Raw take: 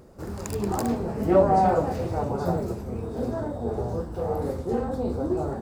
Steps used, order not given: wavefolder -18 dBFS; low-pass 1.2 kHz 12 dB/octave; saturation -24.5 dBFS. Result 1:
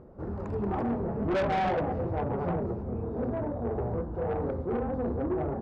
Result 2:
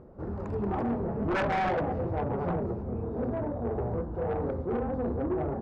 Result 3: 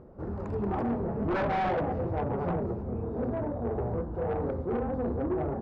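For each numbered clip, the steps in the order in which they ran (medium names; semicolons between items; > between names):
low-pass > saturation > wavefolder; low-pass > wavefolder > saturation; wavefolder > low-pass > saturation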